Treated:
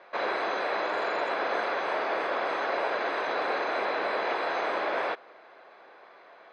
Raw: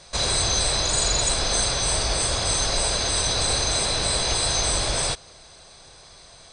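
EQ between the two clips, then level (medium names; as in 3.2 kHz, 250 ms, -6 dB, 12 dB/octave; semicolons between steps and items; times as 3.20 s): high-pass 290 Hz 24 dB/octave; low-pass 2 kHz 24 dB/octave; tilt EQ +1.5 dB/octave; +2.0 dB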